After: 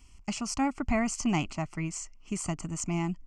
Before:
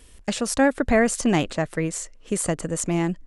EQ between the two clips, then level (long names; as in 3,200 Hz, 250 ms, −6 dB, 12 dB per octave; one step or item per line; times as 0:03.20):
phaser with its sweep stopped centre 2,500 Hz, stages 8
−4.0 dB